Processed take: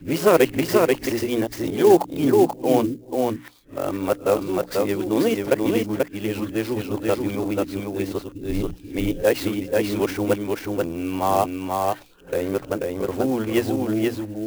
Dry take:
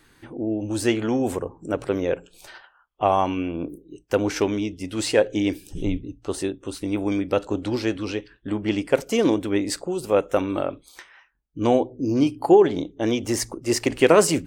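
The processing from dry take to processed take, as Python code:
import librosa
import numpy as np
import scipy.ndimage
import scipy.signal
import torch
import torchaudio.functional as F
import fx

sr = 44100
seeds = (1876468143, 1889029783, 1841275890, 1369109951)

y = x[::-1].copy()
y = fx.air_absorb(y, sr, metres=88.0)
y = fx.hum_notches(y, sr, base_hz=60, count=5)
y = y + 10.0 ** (-3.0 / 20.0) * np.pad(y, (int(486 * sr / 1000.0), 0))[:len(y)]
y = fx.clock_jitter(y, sr, seeds[0], jitter_ms=0.029)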